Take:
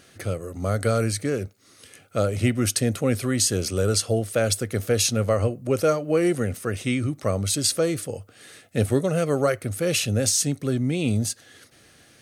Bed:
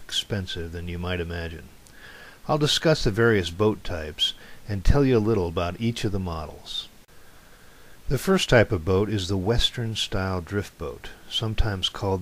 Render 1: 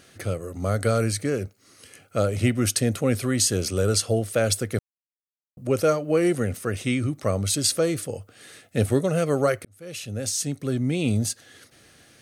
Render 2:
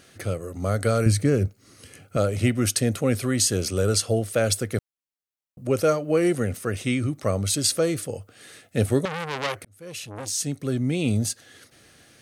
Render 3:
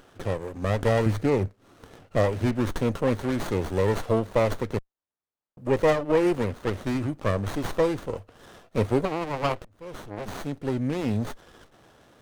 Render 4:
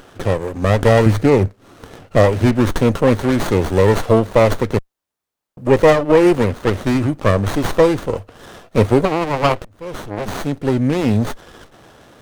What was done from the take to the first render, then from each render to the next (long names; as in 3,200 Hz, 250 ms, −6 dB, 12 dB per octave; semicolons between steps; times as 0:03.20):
0:01.24–0:02.21: notch filter 3,600 Hz, Q 11; 0:04.79–0:05.57: silence; 0:09.65–0:10.92: fade in
0:01.06–0:02.17: low-shelf EQ 260 Hz +11 dB; 0:09.05–0:10.36: saturating transformer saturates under 3,100 Hz
mid-hump overdrive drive 10 dB, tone 2,300 Hz, clips at −6.5 dBFS; windowed peak hold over 17 samples
level +10.5 dB; brickwall limiter −2 dBFS, peak gain reduction 1.5 dB